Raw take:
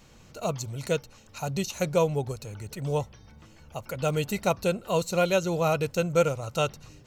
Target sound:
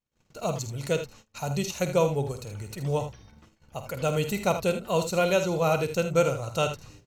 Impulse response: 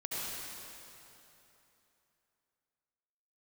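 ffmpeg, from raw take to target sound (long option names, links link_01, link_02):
-af "aecho=1:1:50|78:0.282|0.299,agate=range=-36dB:threshold=-49dB:ratio=16:detection=peak"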